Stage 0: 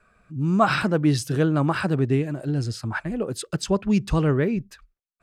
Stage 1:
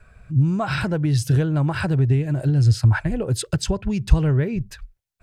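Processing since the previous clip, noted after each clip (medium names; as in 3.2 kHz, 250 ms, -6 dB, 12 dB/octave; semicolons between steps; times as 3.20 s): compression, threshold -26 dBFS, peak gain reduction 12.5 dB; resonant low shelf 150 Hz +11 dB, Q 1.5; band-stop 1.2 kHz, Q 6.6; trim +6 dB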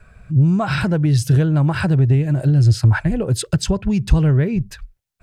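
peaking EQ 180 Hz +3.5 dB 0.77 oct; saturation -7 dBFS, distortion -21 dB; trim +3 dB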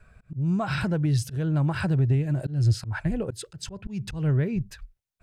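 slow attack 179 ms; trim -7.5 dB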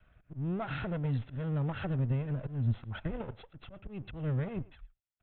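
comb filter that takes the minimum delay 1.5 ms; speakerphone echo 110 ms, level -20 dB; resampled via 8 kHz; trim -8 dB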